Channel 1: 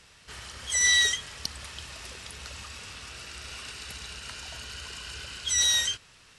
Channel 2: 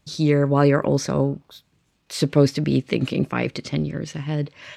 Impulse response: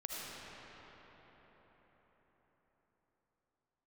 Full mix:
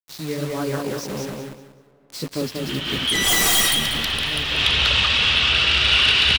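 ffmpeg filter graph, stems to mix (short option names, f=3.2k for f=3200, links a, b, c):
-filter_complex "[0:a]lowpass=f=3.3k:t=q:w=4.4,aeval=exprs='0.473*sin(PI/2*6.31*val(0)/0.473)':c=same,adelay=2400,volume=-2dB,asplit=3[a][b][c];[b]volume=-13dB[d];[c]volume=-8.5dB[e];[1:a]adynamicequalizer=threshold=0.00447:dfrequency=4900:dqfactor=1.5:tfrequency=4900:tqfactor=1.5:attack=5:release=100:ratio=0.375:range=3:mode=boostabove:tftype=bell,flanger=delay=9.4:depth=8.6:regen=-10:speed=1.7:shape=sinusoidal,acrusher=bits=4:mix=0:aa=0.000001,volume=-6.5dB,asplit=4[f][g][h][i];[g]volume=-21dB[j];[h]volume=-3dB[k];[i]apad=whole_len=387214[l];[a][l]sidechaincompress=threshold=-44dB:ratio=8:attack=5:release=195[m];[2:a]atrim=start_sample=2205[n];[d][j]amix=inputs=2:normalize=0[o];[o][n]afir=irnorm=-1:irlink=0[p];[e][k]amix=inputs=2:normalize=0,aecho=0:1:189|378|567|756:1|0.26|0.0676|0.0176[q];[m][f][p][q]amix=inputs=4:normalize=0"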